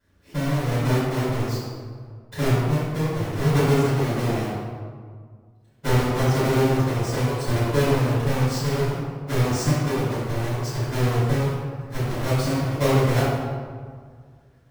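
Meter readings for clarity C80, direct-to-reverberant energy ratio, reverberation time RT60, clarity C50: 0.0 dB, -14.5 dB, 1.9 s, -2.5 dB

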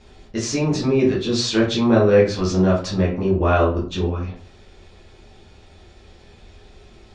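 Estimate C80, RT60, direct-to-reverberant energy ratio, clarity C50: 12.5 dB, 0.45 s, -6.0 dB, 7.0 dB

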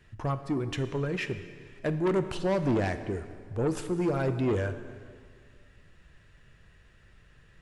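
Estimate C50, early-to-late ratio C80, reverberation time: 11.0 dB, 12.0 dB, 2.0 s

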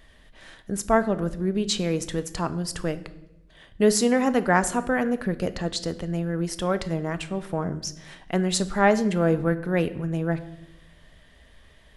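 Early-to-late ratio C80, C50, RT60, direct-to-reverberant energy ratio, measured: 18.0 dB, 15.5 dB, 0.90 s, 11.5 dB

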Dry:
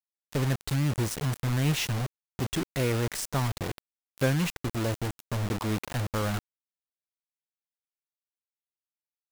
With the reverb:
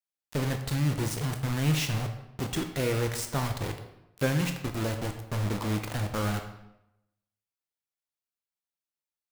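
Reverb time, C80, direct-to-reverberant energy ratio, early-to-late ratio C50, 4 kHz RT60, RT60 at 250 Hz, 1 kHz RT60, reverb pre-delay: 0.85 s, 10.0 dB, 5.0 dB, 8.0 dB, 0.65 s, 0.90 s, 0.85 s, 13 ms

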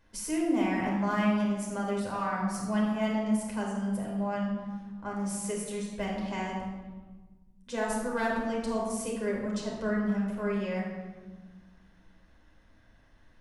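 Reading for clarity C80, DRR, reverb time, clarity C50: 3.5 dB, -3.0 dB, 1.4 s, 1.5 dB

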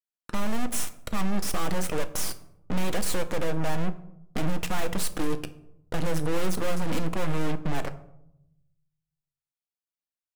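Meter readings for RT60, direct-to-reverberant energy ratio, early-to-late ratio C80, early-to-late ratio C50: 0.80 s, 9.0 dB, 18.5 dB, 15.5 dB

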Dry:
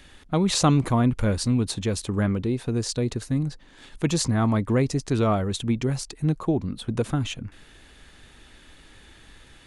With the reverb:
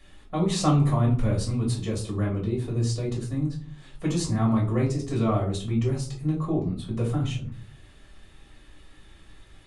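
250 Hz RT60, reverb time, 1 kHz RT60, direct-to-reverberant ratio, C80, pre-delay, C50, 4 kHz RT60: 0.60 s, 0.45 s, 0.40 s, -4.0 dB, 13.5 dB, 4 ms, 8.0 dB, 0.25 s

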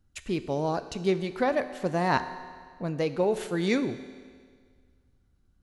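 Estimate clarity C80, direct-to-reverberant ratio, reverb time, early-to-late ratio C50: 13.0 dB, 10.5 dB, 1.8 s, 12.0 dB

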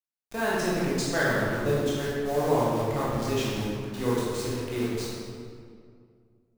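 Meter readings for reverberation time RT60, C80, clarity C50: 2.2 s, 0.0 dB, -2.5 dB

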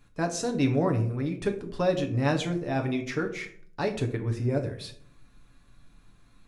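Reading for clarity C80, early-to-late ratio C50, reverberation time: 14.5 dB, 11.5 dB, 0.60 s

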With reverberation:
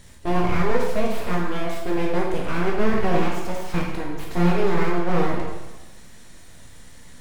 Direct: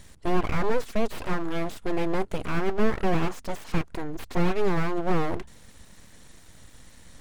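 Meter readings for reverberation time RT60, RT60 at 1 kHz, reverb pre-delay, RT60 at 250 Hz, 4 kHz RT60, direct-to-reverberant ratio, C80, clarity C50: 1.1 s, 1.1 s, 6 ms, 1.2 s, 1.0 s, -2.5 dB, 5.0 dB, 2.5 dB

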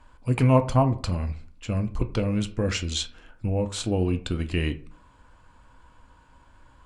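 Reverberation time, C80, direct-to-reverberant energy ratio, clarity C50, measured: 0.45 s, 20.5 dB, 8.0 dB, 15.5 dB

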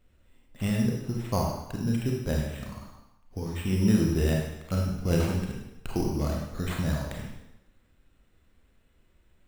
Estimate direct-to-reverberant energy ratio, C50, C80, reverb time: -1.5 dB, 1.0 dB, 4.0 dB, 0.90 s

